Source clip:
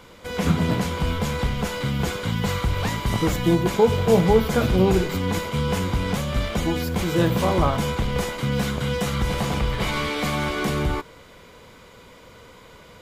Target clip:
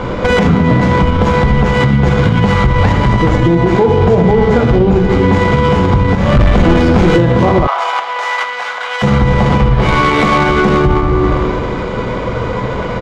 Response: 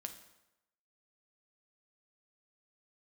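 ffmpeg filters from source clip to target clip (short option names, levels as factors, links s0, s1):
-filter_complex "[0:a]highshelf=f=4100:g=5,aecho=1:1:84:0.266[s0];[1:a]atrim=start_sample=2205,asetrate=26901,aresample=44100[s1];[s0][s1]afir=irnorm=-1:irlink=0,asettb=1/sr,asplit=3[s2][s3][s4];[s2]atrim=end=6.154[s5];[s3]atrim=start=6.15:end=7.16,asetpts=PTS-STARTPTS,afade=t=in:d=0.004:c=qsin,afade=t=out:st=1.006:d=0.004:c=qsin,aeval=exprs='(tanh(17.8*val(0)+0.3)-tanh(0.3))/17.8':c=same[s6];[s4]atrim=start=7.156[s7];[s5][s6]acrossfade=d=0.004:c1=hsin:c2=qsin[s8];[s8][s7]acrossfade=d=0.004:c1=qsin:c2=hsin,acompressor=threshold=0.0178:ratio=8,lowpass=f=6900:t=q:w=1.8,adynamicsmooth=sensitivity=2.5:basefreq=1200,asplit=3[s9][s10][s11];[s9]afade=t=out:st=7.66:d=0.02[s12];[s10]highpass=f=770:w=0.5412,highpass=f=770:w=1.3066,afade=t=in:st=7.66:d=0.02,afade=t=out:st=9.02:d=0.02[s13];[s11]afade=t=in:st=9.02:d=0.02[s14];[s12][s13][s14]amix=inputs=3:normalize=0,alimiter=level_in=39.8:limit=0.891:release=50:level=0:latency=1,volume=0.891"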